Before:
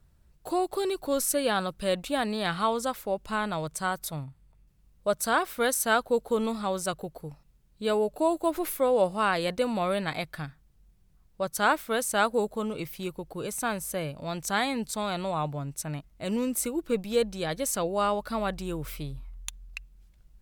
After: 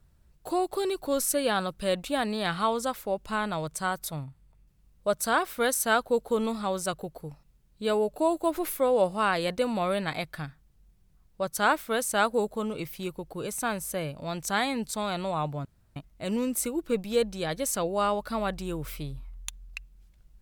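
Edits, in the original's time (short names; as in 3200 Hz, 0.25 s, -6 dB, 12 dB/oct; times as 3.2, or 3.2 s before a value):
15.65–15.96 room tone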